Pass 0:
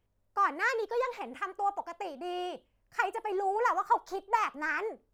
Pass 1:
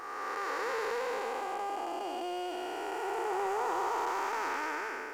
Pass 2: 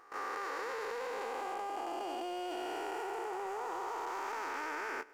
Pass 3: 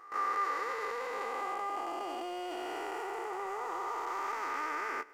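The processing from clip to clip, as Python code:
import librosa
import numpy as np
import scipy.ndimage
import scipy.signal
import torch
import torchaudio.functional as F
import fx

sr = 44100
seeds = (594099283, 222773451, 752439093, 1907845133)

y1 = fx.spec_blur(x, sr, span_ms=788.0)
y1 = fx.leveller(y1, sr, passes=1)
y1 = fx.bass_treble(y1, sr, bass_db=-6, treble_db=6)
y1 = y1 * 10.0 ** (3.5 / 20.0)
y2 = fx.level_steps(y1, sr, step_db=20)
y2 = y2 * 10.0 ** (1.0 / 20.0)
y3 = fx.small_body(y2, sr, hz=(1200.0, 2000.0), ring_ms=45, db=12)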